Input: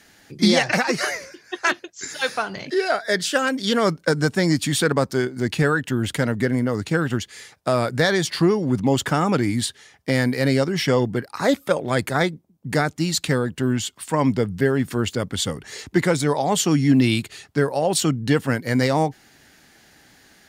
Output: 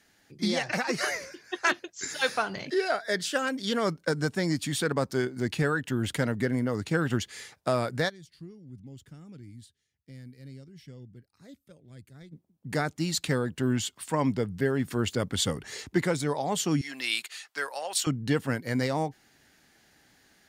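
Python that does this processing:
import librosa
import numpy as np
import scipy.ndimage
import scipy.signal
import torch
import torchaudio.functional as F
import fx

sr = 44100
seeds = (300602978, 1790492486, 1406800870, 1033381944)

y = fx.tone_stack(x, sr, knobs='10-0-1', at=(8.08, 12.31), fade=0.02)
y = fx.highpass(y, sr, hz=1100.0, slope=12, at=(16.81, 18.07))
y = fx.rider(y, sr, range_db=5, speed_s=0.5)
y = y * librosa.db_to_amplitude(-6.5)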